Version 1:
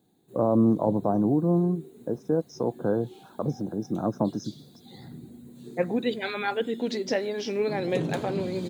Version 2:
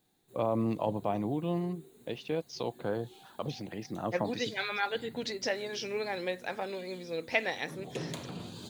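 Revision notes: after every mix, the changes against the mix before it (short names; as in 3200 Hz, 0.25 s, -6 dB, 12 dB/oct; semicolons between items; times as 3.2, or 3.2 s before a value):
first voice: remove brick-wall FIR band-stop 1700–5000 Hz; second voice: entry -1.65 s; master: add bell 240 Hz -11 dB 2.8 oct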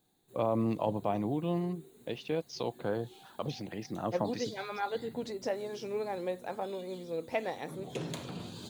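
second voice: add band shelf 3100 Hz -11 dB 2.3 oct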